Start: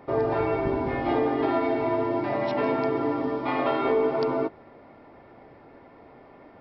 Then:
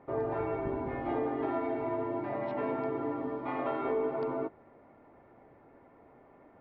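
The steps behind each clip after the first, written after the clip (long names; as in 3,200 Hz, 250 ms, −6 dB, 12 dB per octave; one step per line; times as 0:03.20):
low-pass filter 2,100 Hz 12 dB per octave
level −8 dB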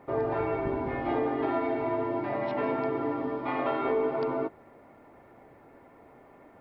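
high-shelf EQ 3,000 Hz +10 dB
level +3.5 dB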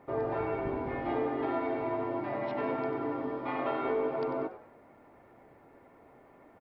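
echo with shifted repeats 95 ms, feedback 33%, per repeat +93 Hz, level −13.5 dB
level −3.5 dB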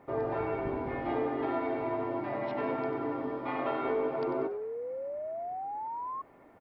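sound drawn into the spectrogram rise, 0:04.26–0:06.22, 350–1,100 Hz −37 dBFS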